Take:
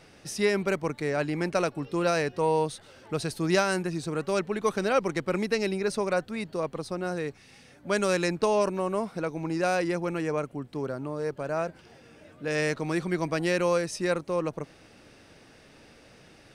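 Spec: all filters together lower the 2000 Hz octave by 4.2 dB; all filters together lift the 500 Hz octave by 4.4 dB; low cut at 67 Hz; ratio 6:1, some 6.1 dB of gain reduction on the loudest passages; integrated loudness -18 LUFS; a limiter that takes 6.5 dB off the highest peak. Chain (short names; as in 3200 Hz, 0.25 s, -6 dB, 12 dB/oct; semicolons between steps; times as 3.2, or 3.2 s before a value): HPF 67 Hz; bell 500 Hz +5.5 dB; bell 2000 Hz -6 dB; compressor 6:1, threshold -23 dBFS; gain +12.5 dB; limiter -7.5 dBFS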